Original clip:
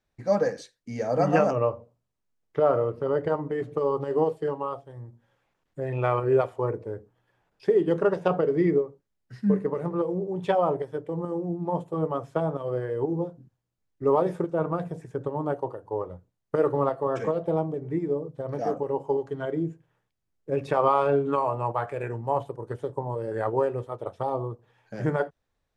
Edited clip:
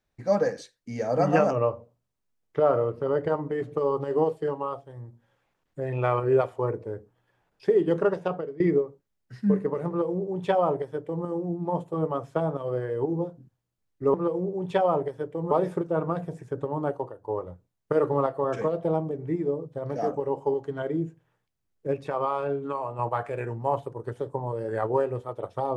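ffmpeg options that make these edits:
ffmpeg -i in.wav -filter_complex "[0:a]asplit=7[link_01][link_02][link_03][link_04][link_05][link_06][link_07];[link_01]atrim=end=8.6,asetpts=PTS-STARTPTS,afade=type=out:start_time=8.02:duration=0.58:silence=0.0891251[link_08];[link_02]atrim=start=8.6:end=14.142,asetpts=PTS-STARTPTS,afade=type=in:duration=0.004:curve=hsin:silence=0.0891251[link_09];[link_03]atrim=start=9.878:end=11.252[link_10];[link_04]atrim=start=14.138:end=15.87,asetpts=PTS-STARTPTS,afade=type=out:start_time=1.412:duration=0.32:silence=0.473151[link_11];[link_05]atrim=start=15.87:end=20.572,asetpts=PTS-STARTPTS,afade=type=in:duration=0.004:curve=hsin:silence=0.473151[link_12];[link_06]atrim=start=20.568:end=21.622,asetpts=PTS-STARTPTS,volume=-6dB[link_13];[link_07]atrim=start=21.618[link_14];[link_08][link_09]concat=n=2:v=0:a=1[link_15];[link_15][link_10]acrossfade=duration=0.004:curve1=hsin:curve2=hsin[link_16];[link_11][link_12]concat=n=2:v=0:a=1[link_17];[link_16][link_17]acrossfade=duration=0.004:curve1=hsin:curve2=hsin[link_18];[link_18][link_13]acrossfade=duration=0.004:curve1=hsin:curve2=hsin[link_19];[link_19][link_14]acrossfade=duration=0.004:curve1=hsin:curve2=hsin" out.wav

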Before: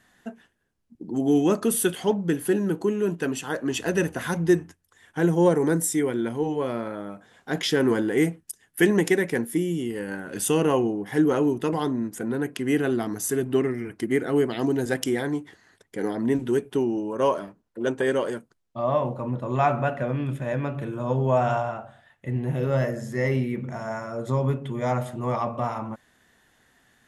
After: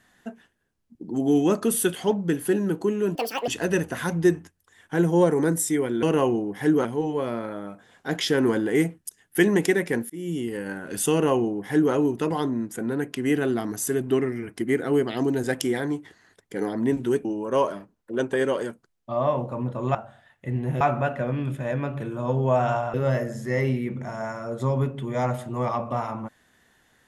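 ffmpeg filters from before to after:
ffmpeg -i in.wav -filter_complex "[0:a]asplit=10[link_01][link_02][link_03][link_04][link_05][link_06][link_07][link_08][link_09][link_10];[link_01]atrim=end=3.154[link_11];[link_02]atrim=start=3.15:end=3.72,asetpts=PTS-STARTPTS,asetrate=76734,aresample=44100[link_12];[link_03]atrim=start=3.716:end=6.272[link_13];[link_04]atrim=start=10.538:end=11.362[link_14];[link_05]atrim=start=6.268:end=9.52,asetpts=PTS-STARTPTS,afade=type=out:start_time=3.248:duration=0.004:curve=hsin[link_15];[link_06]atrim=start=9.52:end=16.672,asetpts=PTS-STARTPTS,afade=type=in:duration=0.26[link_16];[link_07]atrim=start=16.918:end=19.622[link_17];[link_08]atrim=start=21.748:end=22.612[link_18];[link_09]atrim=start=19.618:end=21.752[link_19];[link_10]atrim=start=22.608[link_20];[link_11][link_12]acrossfade=duration=0.004:curve1=hsin:curve2=hsin[link_21];[link_21][link_13]acrossfade=duration=0.004:curve1=hsin:curve2=hsin[link_22];[link_22][link_14]acrossfade=duration=0.004:curve1=hsin:curve2=hsin[link_23];[link_15][link_16]concat=n=2:v=0:a=1[link_24];[link_23][link_24]acrossfade=duration=0.004:curve1=hsin:curve2=hsin[link_25];[link_25][link_17]acrossfade=duration=0.004:curve1=hsin:curve2=hsin[link_26];[link_26][link_18]acrossfade=duration=0.004:curve1=hsin:curve2=hsin[link_27];[link_27][link_19]acrossfade=duration=0.004:curve1=hsin:curve2=hsin[link_28];[link_28][link_20]acrossfade=duration=0.004:curve1=hsin:curve2=hsin" out.wav

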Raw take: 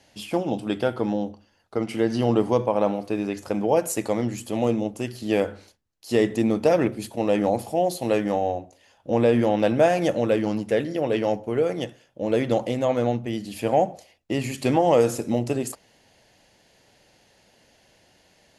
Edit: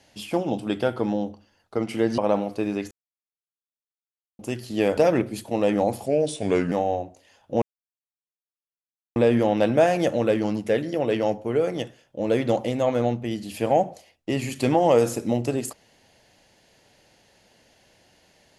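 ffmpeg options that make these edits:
ffmpeg -i in.wav -filter_complex "[0:a]asplit=8[link_01][link_02][link_03][link_04][link_05][link_06][link_07][link_08];[link_01]atrim=end=2.182[link_09];[link_02]atrim=start=2.698:end=3.43,asetpts=PTS-STARTPTS,afade=type=out:start_time=0.728:duration=0.004:curve=hsin[link_10];[link_03]atrim=start=3.43:end=4.91,asetpts=PTS-STARTPTS,volume=0[link_11];[link_04]atrim=start=4.91:end=5.492,asetpts=PTS-STARTPTS,afade=type=in:duration=0.004:curve=hsin[link_12];[link_05]atrim=start=6.628:end=7.724[link_13];[link_06]atrim=start=7.72:end=8.28,asetpts=PTS-STARTPTS,asetrate=37485,aresample=44100,atrim=end_sample=29054,asetpts=PTS-STARTPTS[link_14];[link_07]atrim=start=8.276:end=9.18,asetpts=PTS-STARTPTS,afade=type=out:start_time=0.9:duration=0.004:curve=hsin,apad=pad_dur=1.54[link_15];[link_08]atrim=start=9.18,asetpts=PTS-STARTPTS,afade=type=in:duration=0.004:curve=hsin[link_16];[link_10][link_11][link_12]concat=n=3:v=0:a=1[link_17];[link_09][link_17]acrossfade=duration=0.004:curve1=hsin:curve2=hsin[link_18];[link_18][link_13]acrossfade=duration=0.004:curve1=hsin:curve2=hsin[link_19];[link_19][link_14]acrossfade=duration=0.004:curve1=hsin:curve2=hsin[link_20];[link_15][link_16]concat=n=2:v=0:a=1[link_21];[link_20][link_21]acrossfade=duration=0.004:curve1=hsin:curve2=hsin" out.wav

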